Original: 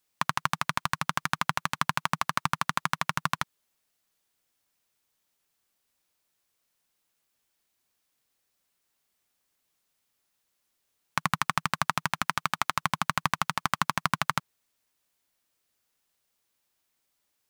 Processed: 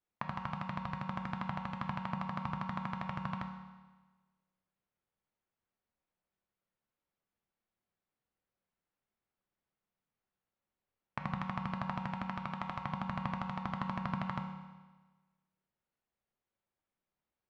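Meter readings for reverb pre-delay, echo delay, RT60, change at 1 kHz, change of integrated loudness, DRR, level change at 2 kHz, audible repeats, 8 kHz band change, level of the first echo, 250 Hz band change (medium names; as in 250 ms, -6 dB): 5 ms, no echo, 1.3 s, -10.5 dB, -10.0 dB, 3.5 dB, -15.0 dB, no echo, under -30 dB, no echo, 0.0 dB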